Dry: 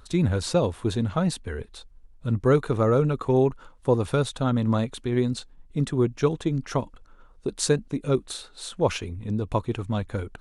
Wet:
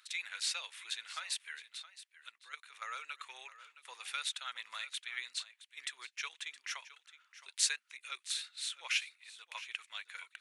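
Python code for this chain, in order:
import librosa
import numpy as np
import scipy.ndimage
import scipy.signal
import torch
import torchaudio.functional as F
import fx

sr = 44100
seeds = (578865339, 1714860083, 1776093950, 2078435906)

y = fx.level_steps(x, sr, step_db=16, at=(2.29, 2.82))
y = fx.ladder_highpass(y, sr, hz=1800.0, resonance_pct=45)
y = y + 10.0 ** (-15.5 / 20.0) * np.pad(y, (int(667 * sr / 1000.0), 0))[:len(y)]
y = y * 10.0 ** (5.5 / 20.0)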